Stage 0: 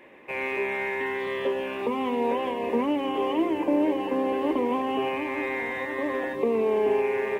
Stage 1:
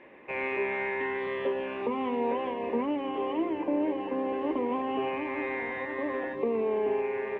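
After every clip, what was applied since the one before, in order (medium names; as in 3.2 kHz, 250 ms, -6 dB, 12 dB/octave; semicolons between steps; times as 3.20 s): gain riding within 4 dB 2 s; low-pass 2.8 kHz 12 dB/octave; trim -4 dB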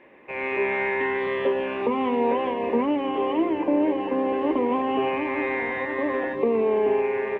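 level rider gain up to 6.5 dB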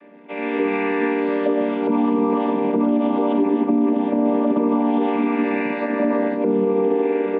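vocoder on a held chord minor triad, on G3; peak limiter -18.5 dBFS, peak gain reduction 8.5 dB; trim +8 dB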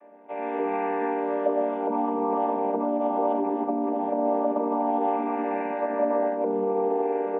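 band-pass filter 740 Hz, Q 2.4; reverberation RT60 0.40 s, pre-delay 5 ms, DRR 12.5 dB; trim +2.5 dB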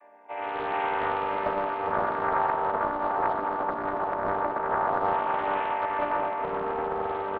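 graphic EQ 125/250/500/1000/2000 Hz -9/-10/-6/+4/+4 dB; feedback delay 411 ms, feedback 56%, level -6.5 dB; loudspeaker Doppler distortion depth 0.52 ms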